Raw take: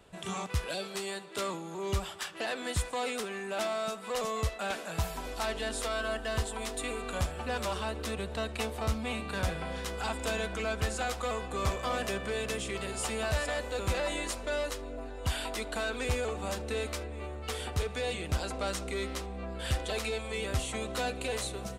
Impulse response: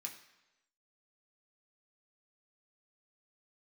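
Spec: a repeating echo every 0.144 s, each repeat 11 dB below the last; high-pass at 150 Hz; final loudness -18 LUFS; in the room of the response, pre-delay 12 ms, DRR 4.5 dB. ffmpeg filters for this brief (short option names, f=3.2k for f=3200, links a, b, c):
-filter_complex "[0:a]highpass=150,aecho=1:1:144|288|432:0.282|0.0789|0.0221,asplit=2[a][b];[1:a]atrim=start_sample=2205,adelay=12[c];[b][c]afir=irnorm=-1:irlink=0,volume=-1.5dB[d];[a][d]amix=inputs=2:normalize=0,volume=15.5dB"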